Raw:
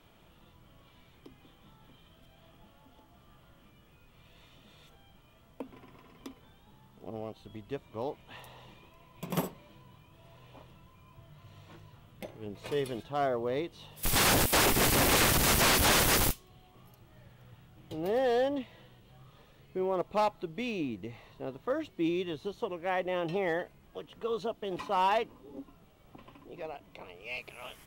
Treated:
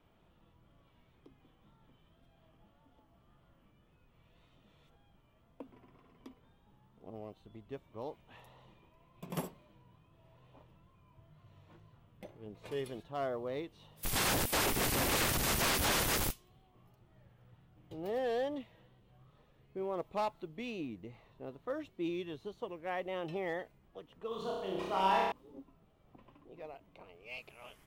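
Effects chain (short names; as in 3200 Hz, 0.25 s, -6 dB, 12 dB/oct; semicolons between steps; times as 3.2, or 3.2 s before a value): wow and flutter 49 cents; 24.28–25.32 flutter echo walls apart 5.4 m, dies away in 1.2 s; mismatched tape noise reduction decoder only; gain -6.5 dB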